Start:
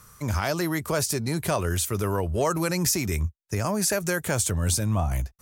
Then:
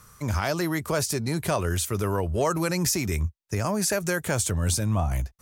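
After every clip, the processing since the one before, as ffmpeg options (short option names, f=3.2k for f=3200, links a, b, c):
-af "highshelf=f=10k:g=-4"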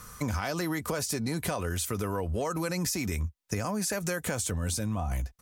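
-filter_complex "[0:a]aecho=1:1:4:0.33,asplit=2[a][b];[b]alimiter=limit=-21.5dB:level=0:latency=1,volume=-1.5dB[c];[a][c]amix=inputs=2:normalize=0,acompressor=threshold=-28dB:ratio=6"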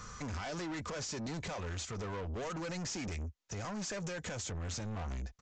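-af "alimiter=limit=-22dB:level=0:latency=1:release=195,aresample=16000,asoftclip=type=tanh:threshold=-38dB,aresample=44100,volume=1dB"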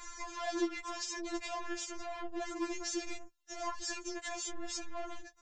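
-af "afftfilt=real='re*4*eq(mod(b,16),0)':imag='im*4*eq(mod(b,16),0)':win_size=2048:overlap=0.75,volume=4.5dB"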